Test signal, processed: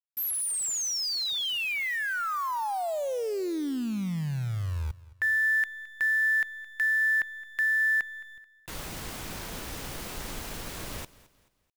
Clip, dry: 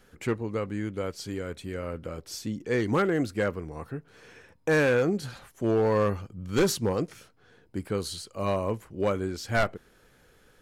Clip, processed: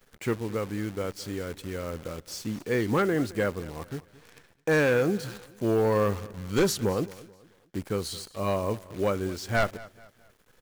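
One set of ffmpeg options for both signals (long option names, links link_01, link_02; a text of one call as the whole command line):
ffmpeg -i in.wav -filter_complex "[0:a]acrusher=bits=8:dc=4:mix=0:aa=0.000001,asplit=2[link_01][link_02];[link_02]aecho=0:1:217|434|651:0.1|0.037|0.0137[link_03];[link_01][link_03]amix=inputs=2:normalize=0" out.wav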